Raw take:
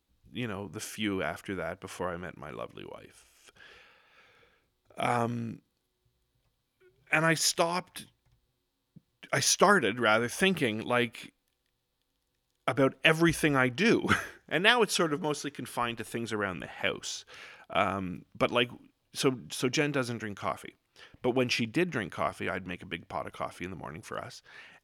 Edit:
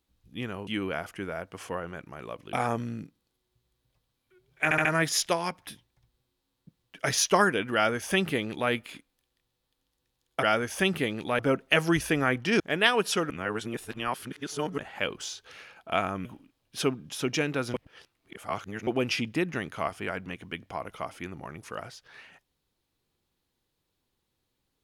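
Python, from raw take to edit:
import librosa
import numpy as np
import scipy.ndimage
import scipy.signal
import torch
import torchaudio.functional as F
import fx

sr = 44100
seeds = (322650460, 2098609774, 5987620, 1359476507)

y = fx.edit(x, sr, fx.cut(start_s=0.67, length_s=0.3),
    fx.cut(start_s=2.83, length_s=2.2),
    fx.stutter(start_s=7.14, slice_s=0.07, count=4),
    fx.duplicate(start_s=10.04, length_s=0.96, to_s=12.72),
    fx.cut(start_s=13.93, length_s=0.5),
    fx.reverse_span(start_s=15.13, length_s=1.48),
    fx.cut(start_s=18.08, length_s=0.57),
    fx.reverse_span(start_s=20.14, length_s=1.13), tone=tone)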